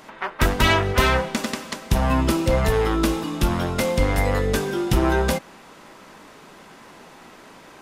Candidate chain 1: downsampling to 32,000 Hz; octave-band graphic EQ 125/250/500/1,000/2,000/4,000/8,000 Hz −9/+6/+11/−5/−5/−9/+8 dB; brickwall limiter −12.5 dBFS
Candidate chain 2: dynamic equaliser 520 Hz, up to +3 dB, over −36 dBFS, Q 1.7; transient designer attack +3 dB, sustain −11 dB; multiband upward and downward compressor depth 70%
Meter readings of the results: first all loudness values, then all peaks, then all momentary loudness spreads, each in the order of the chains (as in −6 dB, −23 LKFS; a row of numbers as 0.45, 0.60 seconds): −21.5, −22.0 LKFS; −12.5, −2.5 dBFS; 7, 12 LU